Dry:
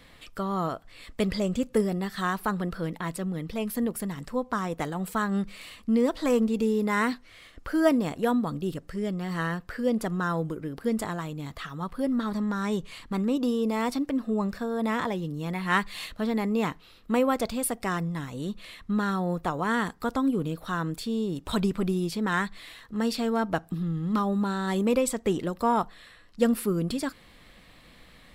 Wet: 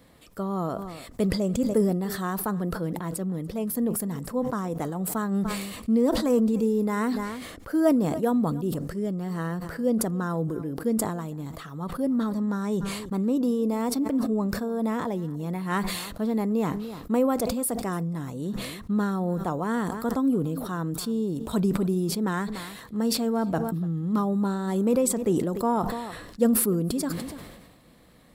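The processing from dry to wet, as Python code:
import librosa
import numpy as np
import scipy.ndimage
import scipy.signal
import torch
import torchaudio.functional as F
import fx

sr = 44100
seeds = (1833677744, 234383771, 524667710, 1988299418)

p1 = fx.highpass(x, sr, hz=120.0, slope=6)
p2 = fx.peak_eq(p1, sr, hz=2600.0, db=-13.0, octaves=2.5)
p3 = p2 + fx.echo_single(p2, sr, ms=292, db=-22.0, dry=0)
p4 = fx.sustainer(p3, sr, db_per_s=41.0)
y = p4 * 10.0 ** (3.0 / 20.0)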